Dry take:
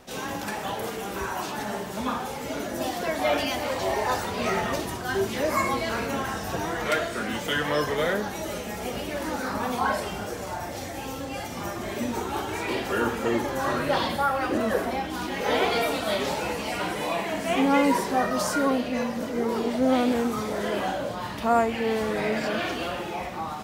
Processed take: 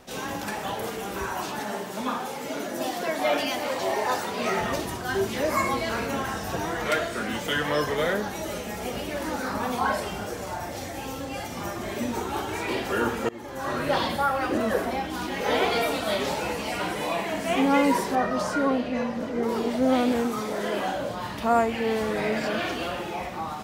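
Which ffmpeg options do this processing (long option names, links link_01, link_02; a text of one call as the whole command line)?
ffmpeg -i in.wav -filter_complex "[0:a]asettb=1/sr,asplit=3[link_01][link_02][link_03];[link_01]atrim=end=1.594[link_04];[link_02]atrim=start=1.59:end=4.59,asetpts=PTS-STARTPTS,afade=type=in:duration=0.004:curve=qsin,afade=type=out:start_time=2.996:duration=0.004:curve=qsin,highpass=170[link_05];[link_03]atrim=start=4.586[link_06];[link_04][link_05]acrossfade=duration=0.004:curve1=hsin:curve2=qsin[link_07];[link_07][link_06]acrossfade=duration=0.004:curve1=qsin:curve2=hsin,asettb=1/sr,asplit=3[link_08][link_09][link_10];[link_08]atrim=end=18.154[link_11];[link_09]atrim=start=18.15:end=19.43,asetpts=PTS-STARTPTS,afade=type=in:duration=0.004:curve=qsin,afade=type=out:start_time=1.276:duration=0.004:curve=qsin,aemphasis=mode=reproduction:type=50kf[link_12];[link_10]atrim=start=19.426[link_13];[link_11][link_12]acrossfade=duration=0.004:curve1=hsin:curve2=qsin[link_14];[link_14][link_13]acrossfade=duration=0.004:curve1=qsin:curve2=hsin,asettb=1/sr,asplit=3[link_15][link_16][link_17];[link_15]atrim=end=20.254[link_18];[link_16]atrim=start=20.25:end=20.95,asetpts=PTS-STARTPTS,afade=type=in:duration=0.004:curve=qsin,afade=type=out:start_time=0.696:duration=0.004:curve=qsin,equalizer=frequency=77:width_type=o:width=1.1:gain=-11.5[link_19];[link_17]atrim=start=20.946[link_20];[link_18][link_19]acrossfade=duration=0.004:curve1=hsin:curve2=qsin[link_21];[link_21][link_20]acrossfade=duration=0.004:curve1=qsin:curve2=hsin,asplit=2[link_22][link_23];[link_22]atrim=end=13.29,asetpts=PTS-STARTPTS,afade=type=out:start_time=13.286:duration=0.004:curve=hsin:silence=0.0630957[link_24];[link_23]atrim=start=13.29,asetpts=PTS-STARTPTS,afade=type=in:duration=0.6:silence=0.0630957[link_25];[link_24][link_25]concat=n=2:v=0:a=1" out.wav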